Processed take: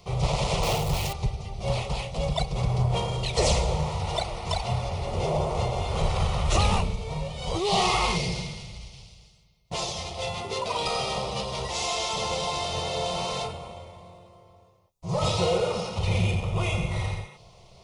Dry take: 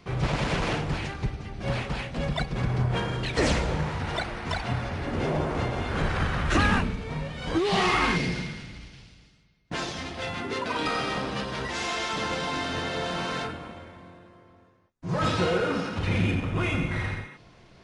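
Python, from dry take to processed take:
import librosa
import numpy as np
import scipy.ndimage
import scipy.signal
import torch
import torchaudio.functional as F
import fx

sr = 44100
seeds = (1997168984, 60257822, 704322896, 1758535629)

y = fx.zero_step(x, sr, step_db=-33.5, at=(0.63, 1.13))
y = fx.high_shelf(y, sr, hz=5100.0, db=5.5)
y = fx.fixed_phaser(y, sr, hz=670.0, stages=4)
y = y * librosa.db_to_amplitude(4.0)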